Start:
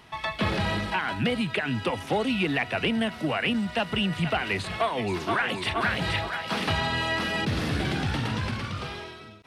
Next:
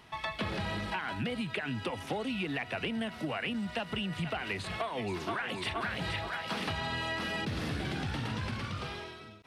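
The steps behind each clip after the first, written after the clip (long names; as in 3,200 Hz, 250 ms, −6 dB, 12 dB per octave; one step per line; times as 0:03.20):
downward compressor, threshold −27 dBFS, peak gain reduction 7 dB
level −4 dB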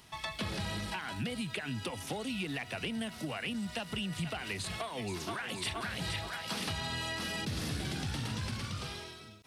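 bass and treble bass +4 dB, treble +14 dB
level −4.5 dB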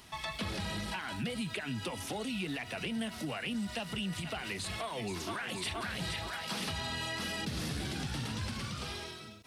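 in parallel at +2 dB: brickwall limiter −35 dBFS, peak gain reduction 10.5 dB
on the sum: flanger 1.9 Hz, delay 2.8 ms, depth 3.3 ms, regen −59%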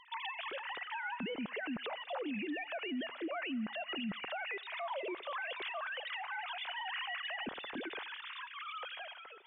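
three sine waves on the formant tracks
brickwall limiter −33.5 dBFS, peak gain reduction 11.5 dB
feedback echo with a high-pass in the loop 88 ms, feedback 84%, high-pass 470 Hz, level −23 dB
level +1 dB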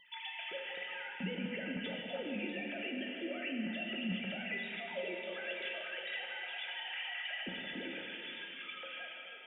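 phaser with its sweep stopped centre 2,600 Hz, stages 4
tuned comb filter 180 Hz, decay 0.17 s, harmonics odd, mix 80%
dense smooth reverb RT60 3.3 s, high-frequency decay 0.9×, DRR 0 dB
level +9 dB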